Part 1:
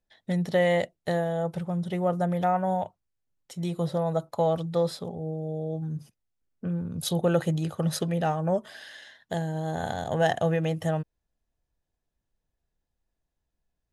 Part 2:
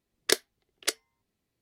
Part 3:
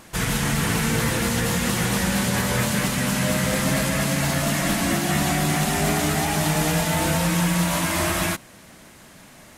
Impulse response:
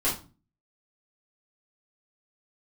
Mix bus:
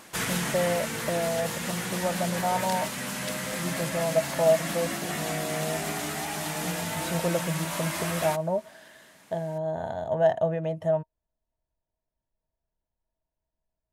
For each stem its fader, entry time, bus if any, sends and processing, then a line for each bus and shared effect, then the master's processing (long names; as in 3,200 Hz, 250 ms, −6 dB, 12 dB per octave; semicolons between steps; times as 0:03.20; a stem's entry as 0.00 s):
−5.0 dB, 0.00 s, no send, high-shelf EQ 2,800 Hz −10.5 dB; hollow resonant body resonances 640/930 Hz, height 14 dB, ringing for 70 ms
−7.5 dB, 2.40 s, no send, downward compressor, threshold −28 dBFS, peak gain reduction 12 dB
−1.0 dB, 0.00 s, no send, high-pass filter 310 Hz 6 dB per octave; automatic ducking −7 dB, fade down 0.80 s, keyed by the first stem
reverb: not used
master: no processing